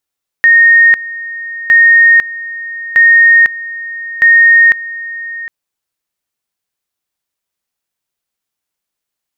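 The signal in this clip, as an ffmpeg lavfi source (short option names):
-f lavfi -i "aevalsrc='pow(10,(-2.5-17.5*gte(mod(t,1.26),0.5))/20)*sin(2*PI*1850*t)':d=5.04:s=44100"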